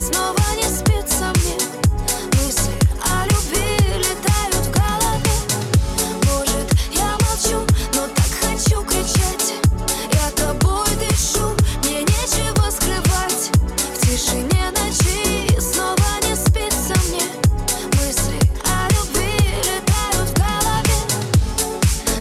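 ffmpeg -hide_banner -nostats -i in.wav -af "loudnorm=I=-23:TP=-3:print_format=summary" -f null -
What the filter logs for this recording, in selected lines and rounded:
Input Integrated:    -18.0 LUFS
Input True Peak:      -4.4 dBTP
Input LRA:             0.5 LU
Input Threshold:     -28.0 LUFS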